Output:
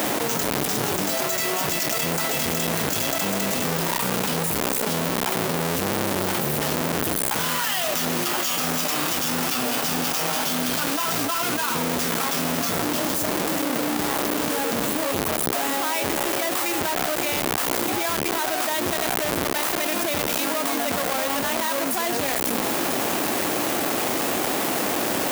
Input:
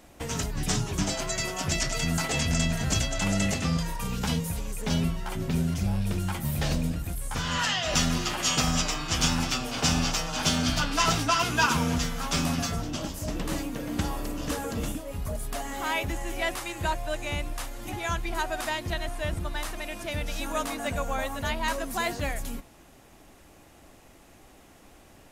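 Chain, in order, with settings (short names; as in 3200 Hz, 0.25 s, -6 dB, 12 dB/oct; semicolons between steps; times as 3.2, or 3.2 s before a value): half-waves squared off; HPF 270 Hz 12 dB/oct; high shelf 11000 Hz +11 dB; fast leveller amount 100%; gain -9.5 dB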